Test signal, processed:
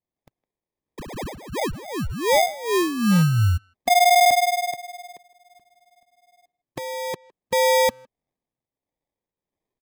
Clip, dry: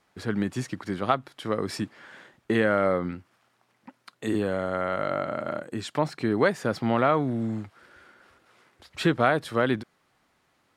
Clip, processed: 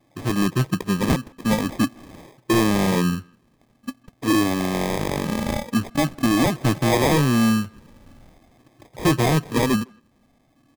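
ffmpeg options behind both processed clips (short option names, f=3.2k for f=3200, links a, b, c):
-filter_complex "[0:a]afftfilt=real='re*pow(10,15/40*sin(2*PI*(0.78*log(max(b,1)*sr/1024/100)/log(2)-(0.46)*(pts-256)/sr)))':imag='im*pow(10,15/40*sin(2*PI*(0.78*log(max(b,1)*sr/1024/100)/log(2)-(0.46)*(pts-256)/sr)))':win_size=1024:overlap=0.75,equalizer=f=125:t=o:w=1:g=6,equalizer=f=250:t=o:w=1:g=9,equalizer=f=500:t=o:w=1:g=-5,equalizer=f=1k:t=o:w=1:g=7,equalizer=f=2k:t=o:w=1:g=-4,equalizer=f=4k:t=o:w=1:g=-4,equalizer=f=8k:t=o:w=1:g=-7,acrossover=split=490[a][b];[a]aeval=exprs='val(0)*(1-0.5/2+0.5/2*cos(2*PI*1.5*n/s))':c=same[c];[b]aeval=exprs='val(0)*(1-0.5/2-0.5/2*cos(2*PI*1.5*n/s))':c=same[d];[c][d]amix=inputs=2:normalize=0,acrusher=samples=31:mix=1:aa=0.000001,volume=18dB,asoftclip=hard,volume=-18dB,asplit=2[e][f];[f]adelay=160,highpass=300,lowpass=3.4k,asoftclip=type=hard:threshold=-26.5dB,volume=-23dB[g];[e][g]amix=inputs=2:normalize=0,volume=4.5dB"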